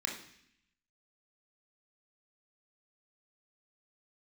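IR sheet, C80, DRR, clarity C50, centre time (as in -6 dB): 10.0 dB, -1.0 dB, 6.0 dB, 30 ms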